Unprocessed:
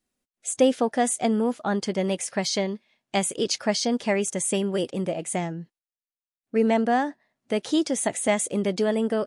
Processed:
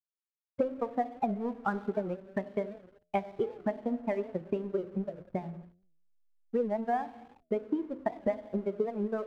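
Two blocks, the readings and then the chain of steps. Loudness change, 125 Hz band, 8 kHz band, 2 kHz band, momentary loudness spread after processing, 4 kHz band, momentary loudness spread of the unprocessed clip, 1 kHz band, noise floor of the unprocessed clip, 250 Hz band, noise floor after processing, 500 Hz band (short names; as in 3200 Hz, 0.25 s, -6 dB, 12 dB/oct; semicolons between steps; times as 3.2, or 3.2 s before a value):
-9.0 dB, -8.5 dB, under -40 dB, -12.5 dB, 7 LU, under -25 dB, 8 LU, -6.5 dB, under -85 dBFS, -9.5 dB, under -85 dBFS, -8.0 dB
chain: per-bin expansion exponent 2; Gaussian blur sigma 5.1 samples; in parallel at -5 dB: soft clip -20 dBFS, distortion -14 dB; on the sum: transient shaper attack +9 dB, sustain -8 dB; compressor 10:1, threshold -25 dBFS, peak gain reduction 19 dB; bell 150 Hz -6 dB 1.6 oct; non-linear reverb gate 0.49 s falling, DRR 11.5 dB; backlash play -48 dBFS; de-hum 87.46 Hz, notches 8; record warp 78 rpm, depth 160 cents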